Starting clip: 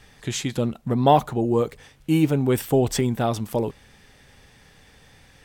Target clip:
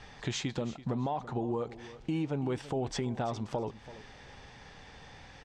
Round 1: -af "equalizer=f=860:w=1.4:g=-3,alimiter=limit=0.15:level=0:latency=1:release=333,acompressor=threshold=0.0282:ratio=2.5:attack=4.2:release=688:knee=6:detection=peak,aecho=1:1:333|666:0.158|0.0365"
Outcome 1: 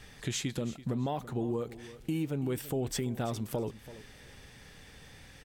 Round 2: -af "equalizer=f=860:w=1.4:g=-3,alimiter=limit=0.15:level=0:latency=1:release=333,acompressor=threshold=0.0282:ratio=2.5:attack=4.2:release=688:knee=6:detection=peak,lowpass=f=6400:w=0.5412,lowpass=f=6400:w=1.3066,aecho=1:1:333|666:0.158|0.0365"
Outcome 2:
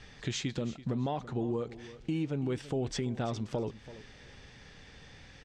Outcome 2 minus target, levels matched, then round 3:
1 kHz band -4.0 dB
-af "equalizer=f=860:w=1.4:g=6.5,alimiter=limit=0.15:level=0:latency=1:release=333,acompressor=threshold=0.0282:ratio=2.5:attack=4.2:release=688:knee=6:detection=peak,lowpass=f=6400:w=0.5412,lowpass=f=6400:w=1.3066,aecho=1:1:333|666:0.158|0.0365"

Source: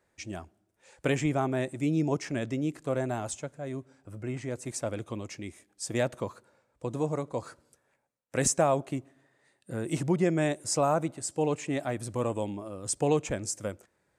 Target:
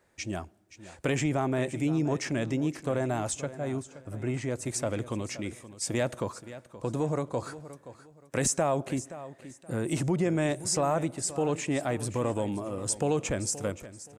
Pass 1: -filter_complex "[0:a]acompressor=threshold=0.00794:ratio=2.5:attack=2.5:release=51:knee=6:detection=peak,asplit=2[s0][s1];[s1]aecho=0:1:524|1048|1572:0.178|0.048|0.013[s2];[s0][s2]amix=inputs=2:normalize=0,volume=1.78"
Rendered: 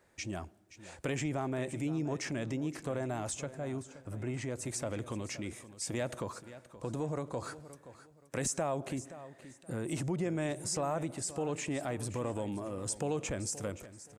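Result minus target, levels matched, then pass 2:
compression: peak gain reduction +7 dB
-filter_complex "[0:a]acompressor=threshold=0.0299:ratio=2.5:attack=2.5:release=51:knee=6:detection=peak,asplit=2[s0][s1];[s1]aecho=0:1:524|1048|1572:0.178|0.048|0.013[s2];[s0][s2]amix=inputs=2:normalize=0,volume=1.78"

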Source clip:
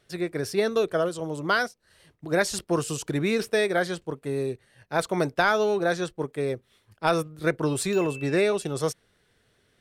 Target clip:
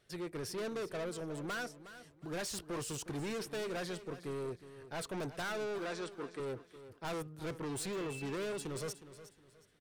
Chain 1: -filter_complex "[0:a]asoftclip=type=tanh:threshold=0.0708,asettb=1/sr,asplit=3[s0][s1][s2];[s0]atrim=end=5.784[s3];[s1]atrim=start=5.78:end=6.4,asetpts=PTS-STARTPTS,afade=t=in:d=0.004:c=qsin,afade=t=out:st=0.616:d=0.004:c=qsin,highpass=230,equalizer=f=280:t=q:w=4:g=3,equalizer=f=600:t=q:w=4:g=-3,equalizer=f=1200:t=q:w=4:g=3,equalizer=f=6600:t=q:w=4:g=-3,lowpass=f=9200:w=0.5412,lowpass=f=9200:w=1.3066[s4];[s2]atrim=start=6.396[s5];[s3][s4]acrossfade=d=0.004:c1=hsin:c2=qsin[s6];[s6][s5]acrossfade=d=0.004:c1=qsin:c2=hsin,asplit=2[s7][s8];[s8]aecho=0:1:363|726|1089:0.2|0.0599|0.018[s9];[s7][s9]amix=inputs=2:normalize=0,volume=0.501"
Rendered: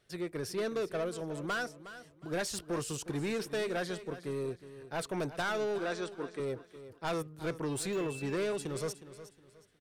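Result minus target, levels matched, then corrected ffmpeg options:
saturation: distortion -5 dB
-filter_complex "[0:a]asoftclip=type=tanh:threshold=0.0299,asettb=1/sr,asplit=3[s0][s1][s2];[s0]atrim=end=5.784[s3];[s1]atrim=start=5.78:end=6.4,asetpts=PTS-STARTPTS,afade=t=in:d=0.004:c=qsin,afade=t=out:st=0.616:d=0.004:c=qsin,highpass=230,equalizer=f=280:t=q:w=4:g=3,equalizer=f=600:t=q:w=4:g=-3,equalizer=f=1200:t=q:w=4:g=3,equalizer=f=6600:t=q:w=4:g=-3,lowpass=f=9200:w=0.5412,lowpass=f=9200:w=1.3066[s4];[s2]atrim=start=6.396[s5];[s3][s4]acrossfade=d=0.004:c1=hsin:c2=qsin[s6];[s6][s5]acrossfade=d=0.004:c1=qsin:c2=hsin,asplit=2[s7][s8];[s8]aecho=0:1:363|726|1089:0.2|0.0599|0.018[s9];[s7][s9]amix=inputs=2:normalize=0,volume=0.501"

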